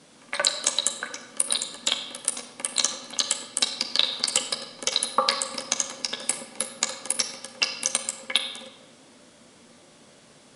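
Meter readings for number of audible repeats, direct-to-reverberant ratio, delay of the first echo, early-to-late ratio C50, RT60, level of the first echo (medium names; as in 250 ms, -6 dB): no echo, 3.5 dB, no echo, 8.0 dB, 1.3 s, no echo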